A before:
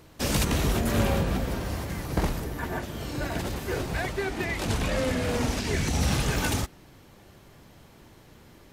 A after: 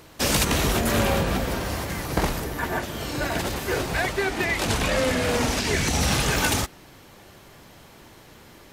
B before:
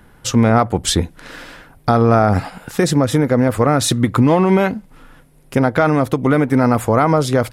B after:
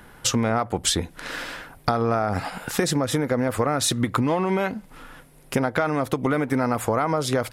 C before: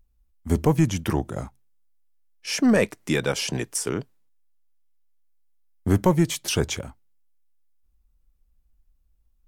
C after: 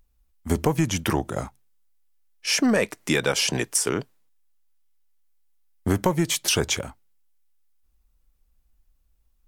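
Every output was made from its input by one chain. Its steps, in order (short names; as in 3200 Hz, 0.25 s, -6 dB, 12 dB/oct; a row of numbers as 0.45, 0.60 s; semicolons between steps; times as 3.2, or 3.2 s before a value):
low shelf 360 Hz -7 dB; compressor, threshold -23 dBFS; match loudness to -24 LUFS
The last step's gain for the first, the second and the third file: +7.5, +3.5, +6.0 dB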